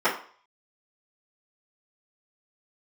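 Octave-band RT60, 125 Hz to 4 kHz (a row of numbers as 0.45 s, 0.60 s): 0.30 s, 0.40 s, 0.45 s, 0.50 s, 0.45 s, 0.45 s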